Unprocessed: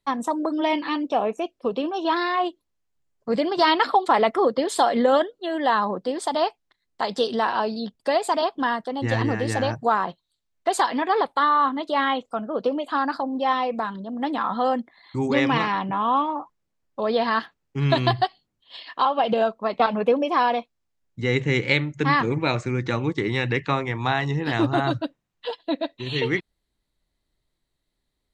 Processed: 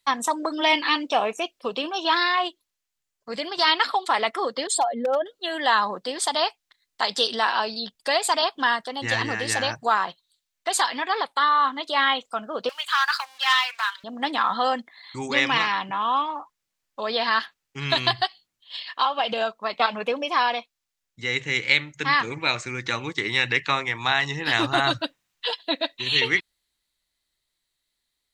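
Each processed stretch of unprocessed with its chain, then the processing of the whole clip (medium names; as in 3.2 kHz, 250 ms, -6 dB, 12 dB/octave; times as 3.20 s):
4.67–5.26 s: spectral contrast enhancement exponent 1.9 + hard clipper -11.5 dBFS
12.69–14.04 s: waveshaping leveller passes 1 + high-pass 1.2 kHz 24 dB/octave
whole clip: tilt shelf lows -9.5 dB; gain riding 2 s; trim -1 dB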